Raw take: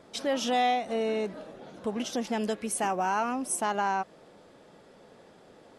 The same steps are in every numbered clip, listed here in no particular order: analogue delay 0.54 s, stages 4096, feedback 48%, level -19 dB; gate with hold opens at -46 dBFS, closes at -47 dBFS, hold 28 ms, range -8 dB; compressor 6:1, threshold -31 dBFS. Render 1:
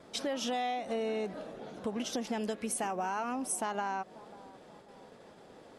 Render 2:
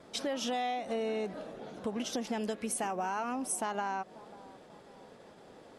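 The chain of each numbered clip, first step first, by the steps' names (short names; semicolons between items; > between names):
gate with hold > compressor > analogue delay; compressor > analogue delay > gate with hold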